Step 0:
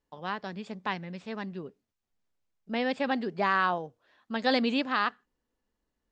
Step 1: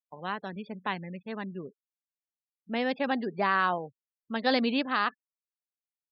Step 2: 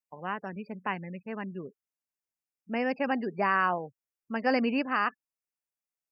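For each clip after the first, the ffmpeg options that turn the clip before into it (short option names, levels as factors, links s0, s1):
-af "afftfilt=real='re*gte(hypot(re,im),0.00708)':imag='im*gte(hypot(re,im),0.00708)':win_size=1024:overlap=0.75"
-af "asuperstop=centerf=3700:order=12:qfactor=2.1"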